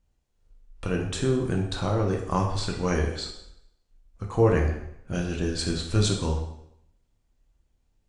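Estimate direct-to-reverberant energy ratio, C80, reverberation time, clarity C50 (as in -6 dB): 0.5 dB, 8.5 dB, 0.75 s, 5.5 dB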